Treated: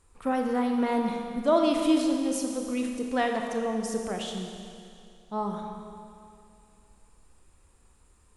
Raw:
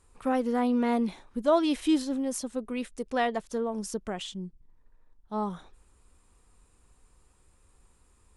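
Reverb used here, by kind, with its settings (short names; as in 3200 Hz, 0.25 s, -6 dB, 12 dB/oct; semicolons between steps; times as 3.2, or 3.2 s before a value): Schroeder reverb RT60 2.5 s, combs from 28 ms, DRR 2.5 dB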